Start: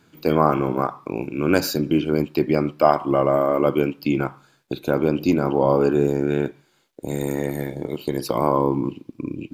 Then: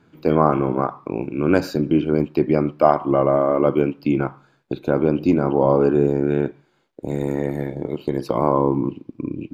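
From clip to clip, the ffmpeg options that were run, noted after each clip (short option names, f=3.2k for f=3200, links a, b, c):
-af "lowpass=f=1.5k:p=1,volume=2dB"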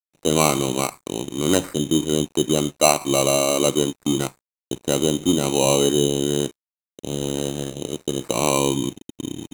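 -af "acrusher=samples=13:mix=1:aa=0.000001,superequalizer=11b=0.708:13b=1.78:14b=0.631:15b=2.82:16b=2.51,aeval=exprs='sgn(val(0))*max(abs(val(0))-0.00841,0)':c=same,volume=-2dB"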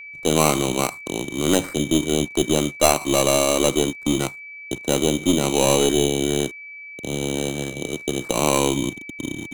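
-filter_complex "[0:a]acrossover=split=140|6000[a][b][c];[a]acompressor=mode=upward:threshold=-41dB:ratio=2.5[d];[d][b][c]amix=inputs=3:normalize=0,aeval=exprs='val(0)+0.0158*sin(2*PI*2300*n/s)':c=same,aeval=exprs='(tanh(2.24*val(0)+0.5)-tanh(0.5))/2.24':c=same,volume=2.5dB"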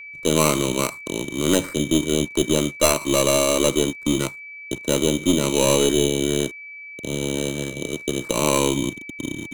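-af "asuperstop=centerf=750:order=8:qfactor=4.3"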